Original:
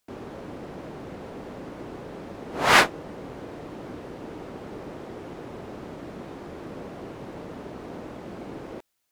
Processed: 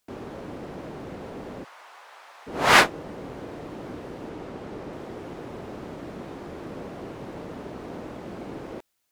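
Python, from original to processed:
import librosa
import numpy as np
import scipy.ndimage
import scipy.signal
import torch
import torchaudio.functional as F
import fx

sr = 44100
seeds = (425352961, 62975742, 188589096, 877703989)

y = fx.highpass(x, sr, hz=870.0, slope=24, at=(1.63, 2.46), fade=0.02)
y = fx.high_shelf(y, sr, hz=11000.0, db=-6.5, at=(4.29, 4.93))
y = y * 10.0 ** (1.0 / 20.0)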